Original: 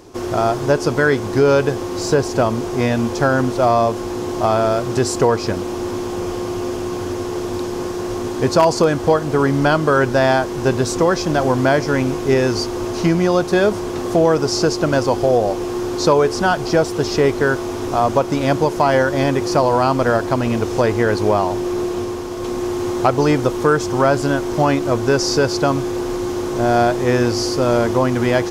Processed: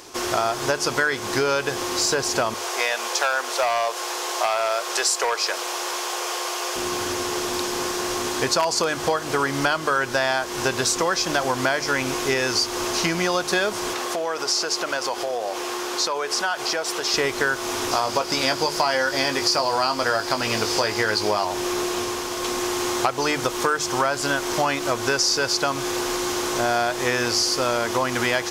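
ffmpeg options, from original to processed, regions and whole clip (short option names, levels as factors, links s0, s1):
-filter_complex "[0:a]asettb=1/sr,asplit=3[s0][s1][s2];[s0]atrim=end=2.544[s3];[s1]atrim=start=2.54:end=6.76,asetpts=PTS-STARTPTS,afade=t=in:d=0.004:c=qsin,afade=t=out:st=4.216:d=0.004:c=qsin,highpass=f=460:w=0.5412,highpass=f=460:w=1.3066,volume=3.98,asoftclip=hard,volume=0.251[s4];[s2]atrim=start=6.756[s5];[s3][s4]acrossfade=d=0.004:c1=hsin:c2=qsin[s6];[s6][s5]acrossfade=d=0.004:c1=qsin:c2=hsin,asettb=1/sr,asplit=3[s7][s8][s9];[s7]atrim=end=13.934[s10];[s8]atrim=start=13.93:end=17.14,asetpts=PTS-STARTPTS,afade=t=in:d=0.004:c=qsin,afade=t=out:st=3.206:d=0.004:c=qsin,bass=f=250:g=-14,treble=f=4000:g=-3,acompressor=threshold=0.0708:ratio=3:attack=3.2:release=140:knee=1:detection=peak[s11];[s9]atrim=start=17.136[s12];[s10][s11]acrossfade=d=0.004:c1=hsin:c2=qsin[s13];[s13][s12]acrossfade=d=0.004:c1=qsin:c2=hsin,asettb=1/sr,asplit=3[s14][s15][s16];[s14]atrim=end=17.914[s17];[s15]atrim=start=17.91:end=21.45,asetpts=PTS-STARTPTS,afade=t=in:d=0.004:c=qsin,afade=t=out:st=3.536:d=0.004:c=qsin,equalizer=f=4800:w=4.8:g=10,asplit=2[s18][s19];[s19]adelay=19,volume=0.422[s20];[s18][s20]amix=inputs=2:normalize=0,atrim=end_sample=156114[s21];[s16]atrim=start=21.446[s22];[s17][s21]acrossfade=d=0.004:c1=hsin:c2=qsin[s23];[s23][s22]acrossfade=d=0.004:c1=qsin:c2=hsin,tiltshelf=f=690:g=-9.5,bandreject=f=50:t=h:w=6,bandreject=f=100:t=h:w=6,bandreject=f=150:t=h:w=6,acompressor=threshold=0.112:ratio=4"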